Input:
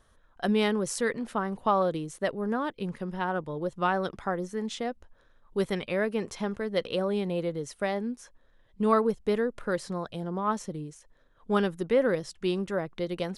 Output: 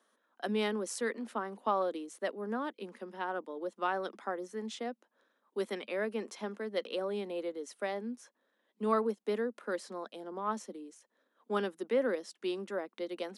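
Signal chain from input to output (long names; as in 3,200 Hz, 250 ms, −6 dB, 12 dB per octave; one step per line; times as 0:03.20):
Butterworth high-pass 210 Hz 72 dB per octave
level −6 dB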